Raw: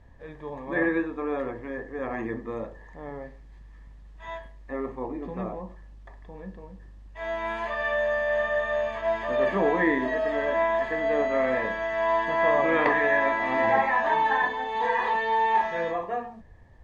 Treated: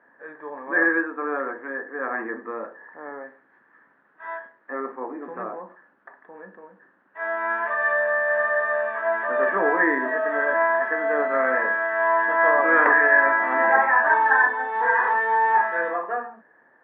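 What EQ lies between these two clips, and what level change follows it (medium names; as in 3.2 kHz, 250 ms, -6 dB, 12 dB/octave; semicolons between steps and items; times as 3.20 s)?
high-pass 260 Hz 24 dB/octave; resonant low-pass 1.5 kHz, resonance Q 8.2; distance through air 93 m; 0.0 dB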